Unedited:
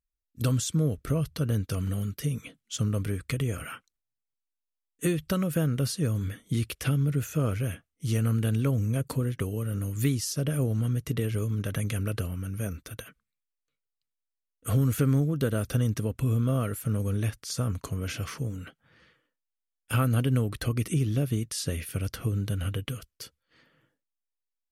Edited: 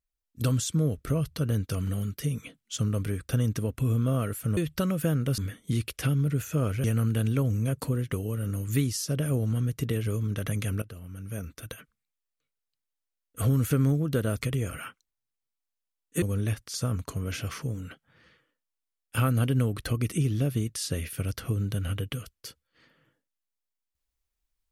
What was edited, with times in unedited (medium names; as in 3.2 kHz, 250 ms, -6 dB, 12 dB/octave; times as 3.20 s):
3.29–5.09 s: swap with 15.70–16.98 s
5.90–6.20 s: delete
7.66–8.12 s: delete
12.10–12.96 s: fade in, from -17.5 dB